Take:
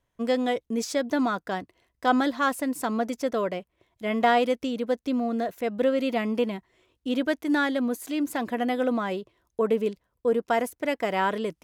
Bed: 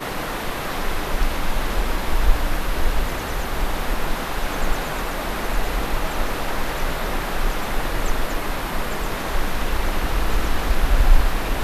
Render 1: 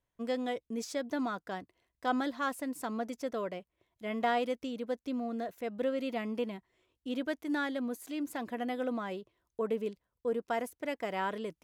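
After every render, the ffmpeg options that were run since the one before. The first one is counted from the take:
ffmpeg -i in.wav -af "volume=-9dB" out.wav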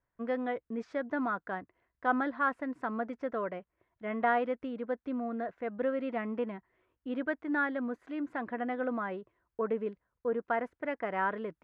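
ffmpeg -i in.wav -af "lowpass=frequency=1600:width_type=q:width=1.9" out.wav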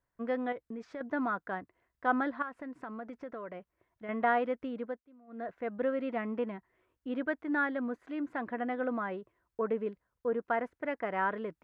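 ffmpeg -i in.wav -filter_complex "[0:a]asettb=1/sr,asplit=3[link_01][link_02][link_03];[link_01]atrim=end=0.524[link_04];[link_02]atrim=start=0.52:end=1.01,asetpts=PTS-STARTPTS,afade=type=in:duration=0.004:curve=qsin,afade=type=out:start_time=0.486:duration=0.004:curve=qsin,acompressor=threshold=-37dB:ratio=6:attack=3.2:release=140:knee=1:detection=peak[link_05];[link_03]atrim=start=1.006[link_06];[link_04][link_05]acrossfade=duration=0.004:curve1=hsin:curve2=qsin[link_07];[link_07][link_06]acrossfade=duration=0.004:curve1=qsin:curve2=hsin,asettb=1/sr,asplit=3[link_08][link_09][link_10];[link_08]atrim=end=2.424[link_11];[link_09]atrim=start=2.42:end=4.09,asetpts=PTS-STARTPTS,afade=type=in:duration=0.004:curve=qsin,afade=type=out:start_time=1.666:duration=0.004:curve=qsin,acompressor=threshold=-40dB:ratio=3:attack=3.2:release=140:knee=1:detection=peak[link_12];[link_10]atrim=start=4.086[link_13];[link_11][link_12]acrossfade=duration=0.004:curve1=hsin:curve2=qsin[link_14];[link_14][link_13]acrossfade=duration=0.004:curve1=qsin:curve2=hsin,asplit=3[link_15][link_16][link_17];[link_15]atrim=end=5.05,asetpts=PTS-STARTPTS,afade=type=out:start_time=4.81:duration=0.24:silence=0.0630957[link_18];[link_16]atrim=start=5.05:end=5.27,asetpts=PTS-STARTPTS,volume=-24dB[link_19];[link_17]atrim=start=5.27,asetpts=PTS-STARTPTS,afade=type=in:duration=0.24:silence=0.0630957[link_20];[link_18][link_19][link_20]concat=n=3:v=0:a=1" out.wav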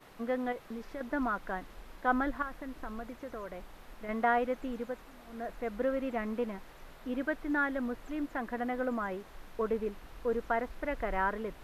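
ffmpeg -i in.wav -i bed.wav -filter_complex "[1:a]volume=-28dB[link_01];[0:a][link_01]amix=inputs=2:normalize=0" out.wav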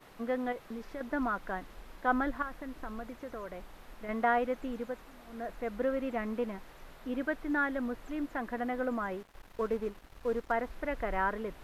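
ffmpeg -i in.wav -filter_complex "[0:a]asettb=1/sr,asplit=3[link_01][link_02][link_03];[link_01]atrim=end=9.234[link_04];[link_02]atrim=start=9.23:end=10.52,asetpts=PTS-STARTPTS,afade=type=in:duration=0.004:curve=qsin,afade=type=out:start_time=1.286:duration=0.004:curve=qsin,aeval=exprs='sgn(val(0))*max(abs(val(0))-0.00266,0)':channel_layout=same[link_05];[link_03]atrim=start=10.516[link_06];[link_04][link_05]acrossfade=duration=0.004:curve1=hsin:curve2=qsin[link_07];[link_07][link_06]acrossfade=duration=0.004:curve1=qsin:curve2=hsin" out.wav

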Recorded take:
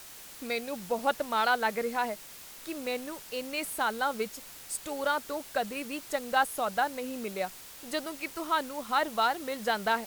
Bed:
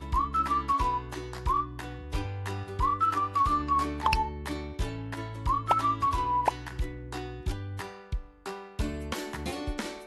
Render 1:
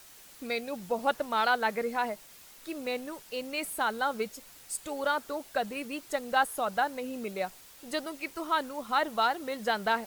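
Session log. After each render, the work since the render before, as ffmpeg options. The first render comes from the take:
ffmpeg -i in.wav -af "afftdn=noise_reduction=6:noise_floor=-48" out.wav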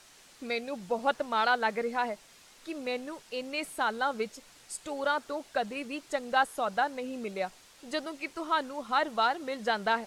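ffmpeg -i in.wav -af "lowpass=7800,equalizer=frequency=61:width=0.94:gain=-4" out.wav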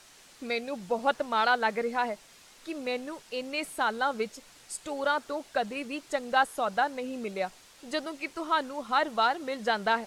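ffmpeg -i in.wav -af "volume=1.5dB" out.wav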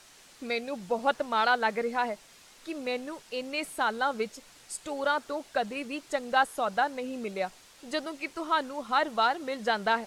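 ffmpeg -i in.wav -af anull out.wav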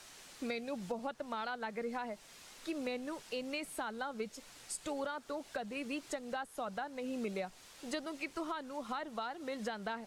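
ffmpeg -i in.wav -filter_complex "[0:a]alimiter=limit=-22dB:level=0:latency=1:release=482,acrossover=split=250[link_01][link_02];[link_02]acompressor=threshold=-39dB:ratio=3[link_03];[link_01][link_03]amix=inputs=2:normalize=0" out.wav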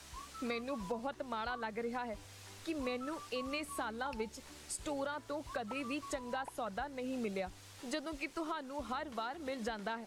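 ffmpeg -i in.wav -i bed.wav -filter_complex "[1:a]volume=-23dB[link_01];[0:a][link_01]amix=inputs=2:normalize=0" out.wav

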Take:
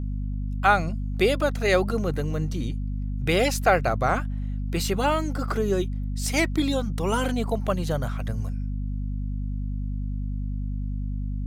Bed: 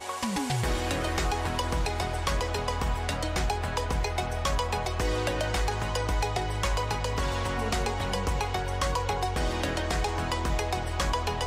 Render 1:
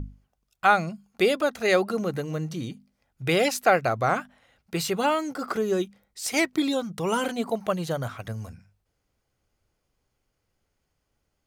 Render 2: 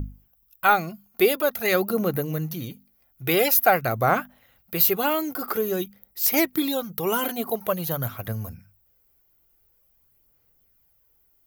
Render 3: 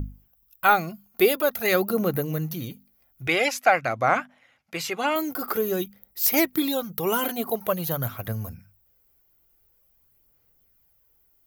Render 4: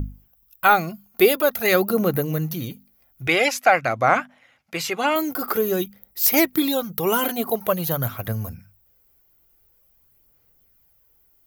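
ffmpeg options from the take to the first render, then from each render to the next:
ffmpeg -i in.wav -af "bandreject=frequency=50:width_type=h:width=6,bandreject=frequency=100:width_type=h:width=6,bandreject=frequency=150:width_type=h:width=6,bandreject=frequency=200:width_type=h:width=6,bandreject=frequency=250:width_type=h:width=6" out.wav
ffmpeg -i in.wav -af "aphaser=in_gain=1:out_gain=1:delay=2.9:decay=0.35:speed=0.48:type=sinusoidal,aexciter=amount=11.5:drive=9:freq=12000" out.wav
ffmpeg -i in.wav -filter_complex "[0:a]asettb=1/sr,asplit=3[link_01][link_02][link_03];[link_01]atrim=end=3.274[link_04];[link_02]atrim=start=3.27:end=5.16,asetpts=PTS-STARTPTS,afade=type=in:duration=0.004:curve=qsin,afade=type=out:start_time=1.886:duration=0.004:curve=qsin,highpass=170,equalizer=frequency=190:width_type=q:width=4:gain=-8,equalizer=frequency=410:width_type=q:width=4:gain=-9,equalizer=frequency=2200:width_type=q:width=4:gain=6,equalizer=frequency=4100:width_type=q:width=4:gain=-4,lowpass=frequency=8200:width=0.5412,lowpass=frequency=8200:width=1.3066[link_05];[link_03]atrim=start=5.156[link_06];[link_04][link_05]acrossfade=duration=0.004:curve1=hsin:curve2=qsin[link_07];[link_07][link_06]acrossfade=duration=0.004:curve1=qsin:curve2=hsin" out.wav
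ffmpeg -i in.wav -af "volume=3.5dB,alimiter=limit=-3dB:level=0:latency=1" out.wav

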